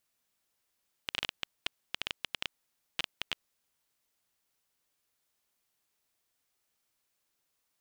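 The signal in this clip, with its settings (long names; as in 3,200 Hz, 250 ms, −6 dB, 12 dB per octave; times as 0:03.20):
Geiger counter clicks 11 per second −14 dBFS 2.30 s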